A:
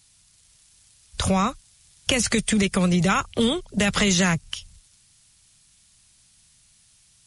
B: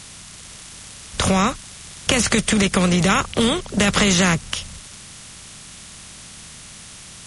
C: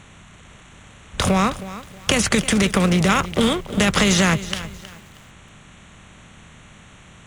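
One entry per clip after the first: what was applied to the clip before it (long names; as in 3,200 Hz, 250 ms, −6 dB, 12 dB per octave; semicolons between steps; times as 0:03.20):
compressor on every frequency bin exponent 0.6; level +1 dB
adaptive Wiener filter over 9 samples; feedback echo at a low word length 317 ms, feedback 35%, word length 6 bits, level −14.5 dB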